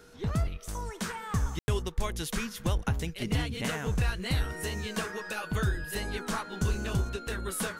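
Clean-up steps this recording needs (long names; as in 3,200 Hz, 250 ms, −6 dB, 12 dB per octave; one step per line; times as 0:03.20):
notch filter 480 Hz, Q 30
ambience match 0:01.59–0:01.68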